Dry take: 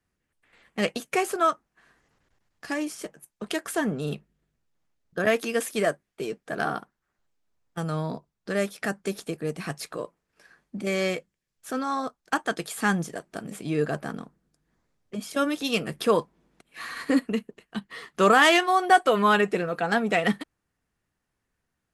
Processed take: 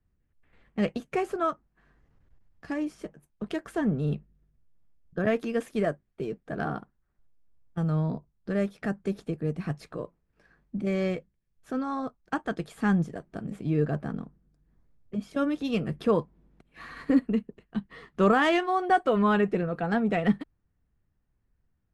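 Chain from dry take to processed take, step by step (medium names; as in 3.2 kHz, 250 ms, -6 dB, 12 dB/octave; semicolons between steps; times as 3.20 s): RIAA curve playback; trim -5.5 dB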